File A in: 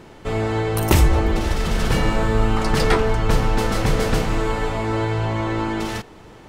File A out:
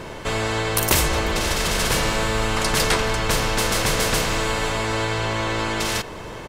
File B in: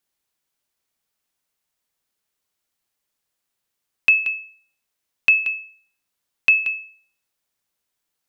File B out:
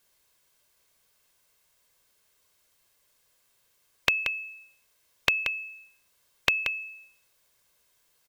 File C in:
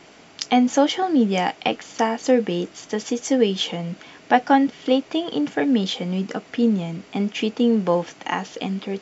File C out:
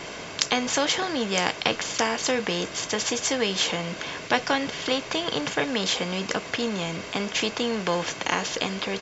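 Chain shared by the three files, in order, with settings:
comb filter 1.9 ms, depth 41%
every bin compressed towards the loudest bin 2 to 1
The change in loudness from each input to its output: −0.5, −10.0, −4.0 LU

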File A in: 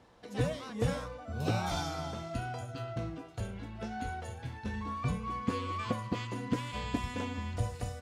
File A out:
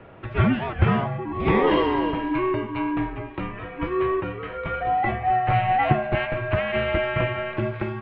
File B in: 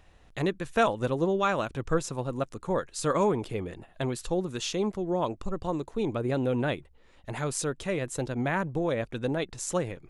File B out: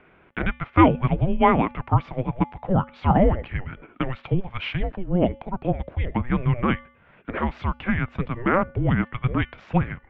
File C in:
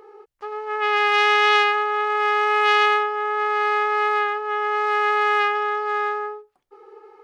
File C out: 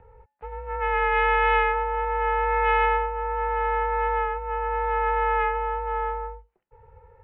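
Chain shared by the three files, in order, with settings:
hum removal 306.1 Hz, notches 32
single-sideband voice off tune −370 Hz 430–3,000 Hz
loudness normalisation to −24 LKFS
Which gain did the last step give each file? +17.5, +10.0, −3.0 decibels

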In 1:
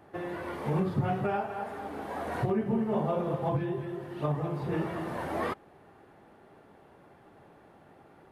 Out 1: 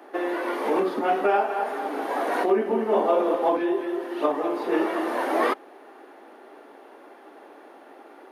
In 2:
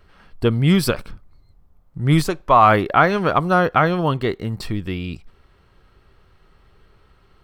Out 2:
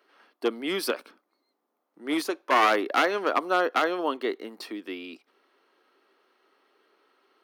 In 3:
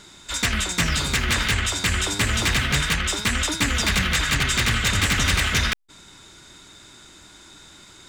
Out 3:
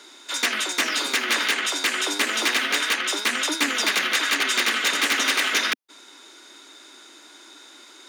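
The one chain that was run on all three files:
wavefolder on the positive side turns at −11.5 dBFS
Butterworth high-pass 260 Hz 48 dB per octave
notch filter 7,700 Hz, Q 6.2
normalise the peak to −9 dBFS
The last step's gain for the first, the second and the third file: +10.0, −6.0, +1.0 decibels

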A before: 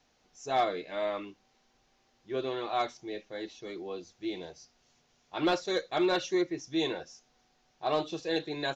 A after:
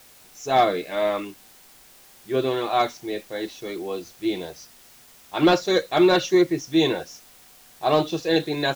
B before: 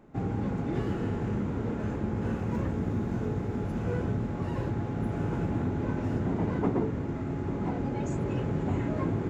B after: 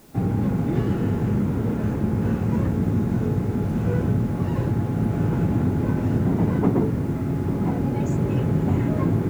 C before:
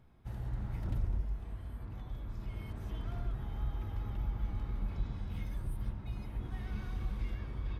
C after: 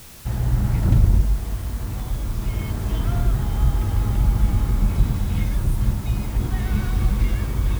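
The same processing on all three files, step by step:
dynamic equaliser 150 Hz, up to +6 dB, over −41 dBFS, Q 0.73
bit-depth reduction 10 bits, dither triangular
loudness normalisation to −23 LKFS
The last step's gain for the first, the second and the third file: +9.0, +4.0, +16.0 decibels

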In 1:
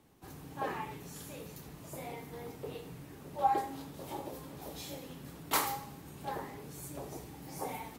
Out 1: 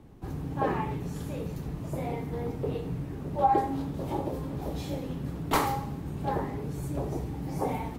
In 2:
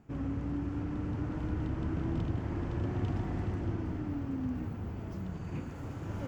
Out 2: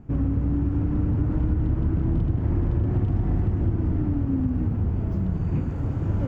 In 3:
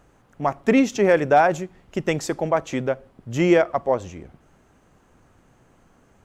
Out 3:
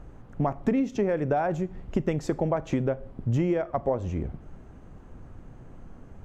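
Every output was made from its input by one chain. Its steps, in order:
spectral tilt −3 dB per octave
downward compressor 12 to 1, threshold −24 dBFS
four-comb reverb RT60 0.33 s, combs from 26 ms, DRR 19 dB
normalise the peak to −12 dBFS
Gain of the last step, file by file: +6.5, +6.0, +2.0 decibels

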